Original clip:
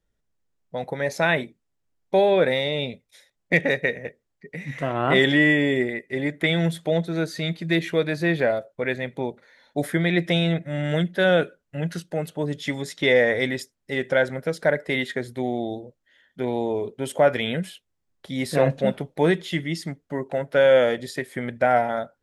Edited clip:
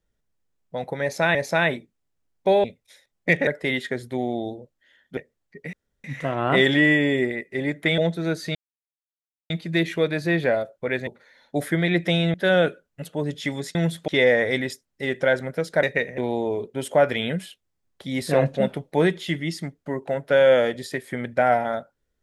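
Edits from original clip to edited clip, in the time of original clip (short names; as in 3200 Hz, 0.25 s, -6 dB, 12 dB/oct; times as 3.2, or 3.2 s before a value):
1.02–1.35 loop, 2 plays
2.31–2.88 cut
3.71–4.06 swap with 14.72–16.42
4.62 insert room tone 0.31 s
6.56–6.89 move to 12.97
7.46 insert silence 0.95 s
9.03–9.29 cut
10.56–11.09 cut
11.77–12.24 cut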